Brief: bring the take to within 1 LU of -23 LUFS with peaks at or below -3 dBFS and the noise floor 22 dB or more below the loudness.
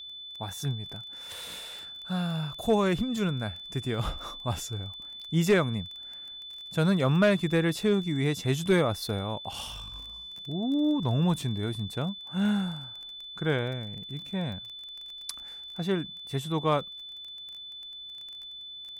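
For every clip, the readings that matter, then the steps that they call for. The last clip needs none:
tick rate 21 per s; steady tone 3.5 kHz; tone level -40 dBFS; loudness -30.5 LUFS; peak level -14.0 dBFS; loudness target -23.0 LUFS
-> de-click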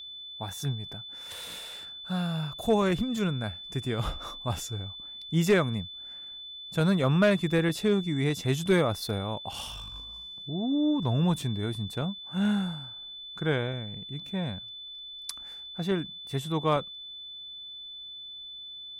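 tick rate 0 per s; steady tone 3.5 kHz; tone level -40 dBFS
-> band-stop 3.5 kHz, Q 30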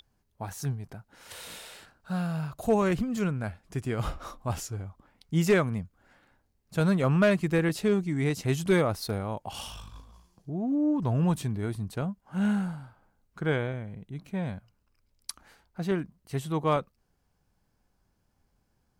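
steady tone not found; loudness -29.0 LUFS; peak level -14.0 dBFS; loudness target -23.0 LUFS
-> trim +6 dB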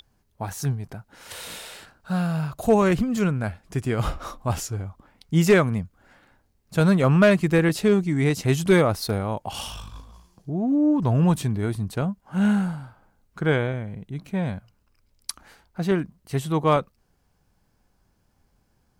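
loudness -23.0 LUFS; peak level -8.0 dBFS; noise floor -67 dBFS

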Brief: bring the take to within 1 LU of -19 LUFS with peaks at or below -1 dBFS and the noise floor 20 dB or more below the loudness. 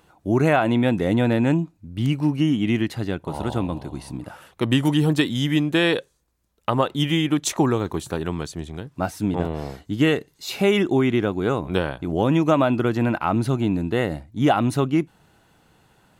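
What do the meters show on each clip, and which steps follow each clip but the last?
loudness -22.0 LUFS; peak level -5.0 dBFS; loudness target -19.0 LUFS
-> trim +3 dB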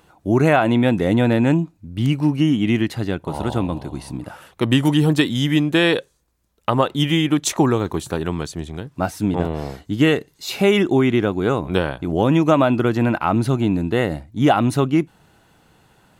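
loudness -19.0 LUFS; peak level -2.0 dBFS; noise floor -60 dBFS

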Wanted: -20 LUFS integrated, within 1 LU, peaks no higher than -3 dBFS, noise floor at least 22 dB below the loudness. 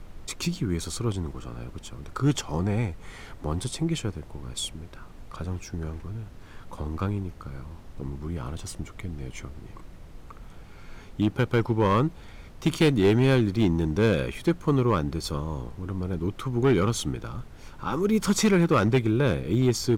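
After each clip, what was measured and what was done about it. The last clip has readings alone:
clipped samples 0.6%; clipping level -14.5 dBFS; noise floor -45 dBFS; noise floor target -49 dBFS; loudness -26.5 LUFS; peak level -14.5 dBFS; loudness target -20.0 LUFS
-> clip repair -14.5 dBFS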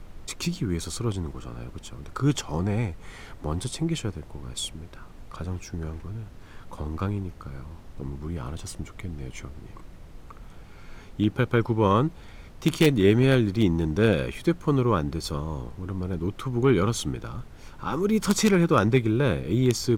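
clipped samples 0.0%; noise floor -45 dBFS; noise floor target -48 dBFS
-> noise print and reduce 6 dB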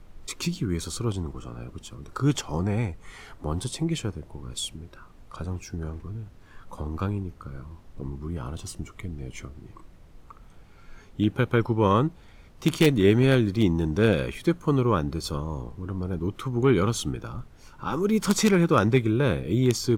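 noise floor -50 dBFS; loudness -25.5 LUFS; peak level -5.5 dBFS; loudness target -20.0 LUFS
-> trim +5.5 dB; peak limiter -3 dBFS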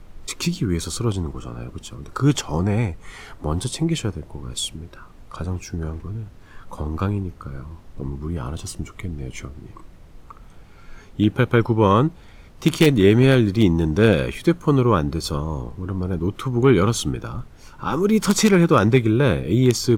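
loudness -20.5 LUFS; peak level -3.0 dBFS; noise floor -45 dBFS

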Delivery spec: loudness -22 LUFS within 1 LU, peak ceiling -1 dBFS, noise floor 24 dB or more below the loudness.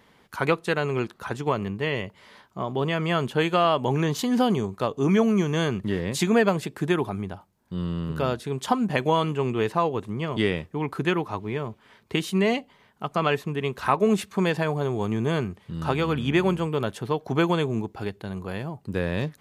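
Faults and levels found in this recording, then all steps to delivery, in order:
loudness -25.5 LUFS; peak level -6.5 dBFS; loudness target -22.0 LUFS
-> trim +3.5 dB

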